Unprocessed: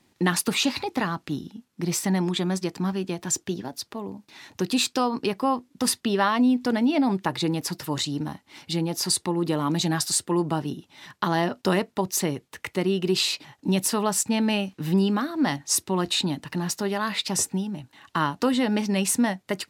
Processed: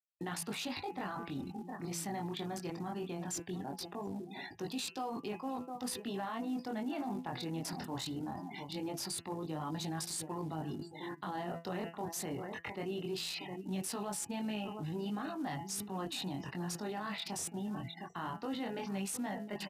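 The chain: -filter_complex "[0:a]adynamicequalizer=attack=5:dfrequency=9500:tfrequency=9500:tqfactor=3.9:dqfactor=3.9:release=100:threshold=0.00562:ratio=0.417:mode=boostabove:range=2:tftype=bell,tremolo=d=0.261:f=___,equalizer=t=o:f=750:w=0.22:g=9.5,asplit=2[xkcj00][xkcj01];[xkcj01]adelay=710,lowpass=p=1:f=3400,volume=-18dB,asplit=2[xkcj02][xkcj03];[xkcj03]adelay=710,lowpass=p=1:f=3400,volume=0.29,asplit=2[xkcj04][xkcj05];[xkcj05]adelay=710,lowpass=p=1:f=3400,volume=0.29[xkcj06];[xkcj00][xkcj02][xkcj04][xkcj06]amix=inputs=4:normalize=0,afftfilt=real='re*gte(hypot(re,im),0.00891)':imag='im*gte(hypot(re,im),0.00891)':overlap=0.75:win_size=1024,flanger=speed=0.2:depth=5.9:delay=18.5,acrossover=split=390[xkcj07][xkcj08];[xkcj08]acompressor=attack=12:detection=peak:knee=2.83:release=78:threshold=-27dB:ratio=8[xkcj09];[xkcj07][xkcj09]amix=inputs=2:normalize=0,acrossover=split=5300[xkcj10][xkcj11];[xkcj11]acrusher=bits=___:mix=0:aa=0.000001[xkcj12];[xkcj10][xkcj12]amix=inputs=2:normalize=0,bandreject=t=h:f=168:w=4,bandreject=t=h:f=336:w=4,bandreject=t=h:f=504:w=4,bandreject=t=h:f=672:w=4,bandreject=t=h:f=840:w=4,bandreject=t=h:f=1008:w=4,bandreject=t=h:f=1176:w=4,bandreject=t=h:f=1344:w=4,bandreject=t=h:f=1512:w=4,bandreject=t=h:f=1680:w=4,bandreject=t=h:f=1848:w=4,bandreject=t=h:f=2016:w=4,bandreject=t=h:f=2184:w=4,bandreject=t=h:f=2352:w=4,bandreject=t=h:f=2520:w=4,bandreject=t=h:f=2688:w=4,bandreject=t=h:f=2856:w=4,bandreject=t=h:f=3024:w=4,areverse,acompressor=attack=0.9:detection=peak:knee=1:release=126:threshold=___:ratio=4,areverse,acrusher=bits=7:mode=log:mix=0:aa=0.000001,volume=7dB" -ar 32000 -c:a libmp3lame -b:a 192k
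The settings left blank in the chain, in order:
57, 5, -45dB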